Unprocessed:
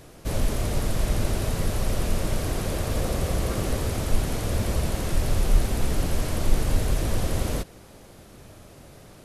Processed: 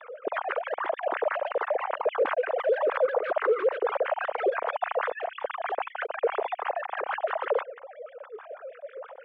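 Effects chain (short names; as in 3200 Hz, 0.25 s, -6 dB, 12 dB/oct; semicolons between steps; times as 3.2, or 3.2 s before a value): sine-wave speech; sine folder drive 6 dB, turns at -7 dBFS; LFO band-pass sine 6.2 Hz 470–1600 Hz; gain -9 dB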